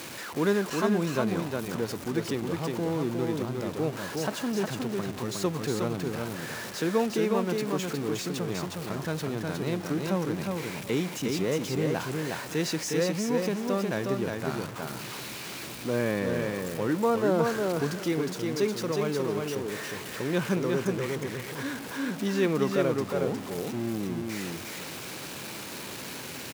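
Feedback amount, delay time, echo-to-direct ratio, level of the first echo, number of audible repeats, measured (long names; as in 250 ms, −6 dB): 18%, 361 ms, −3.5 dB, −3.5 dB, 2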